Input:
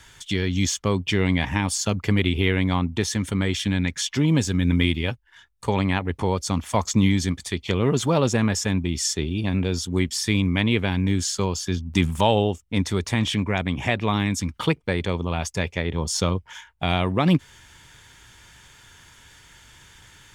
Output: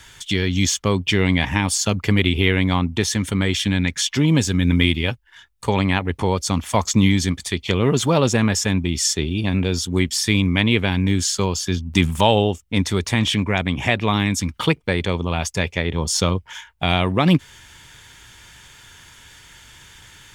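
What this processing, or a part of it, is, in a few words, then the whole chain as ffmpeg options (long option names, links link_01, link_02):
presence and air boost: -af "equalizer=frequency=3000:width_type=o:width=1.5:gain=2.5,highshelf=frequency=11000:gain=5,volume=3dB"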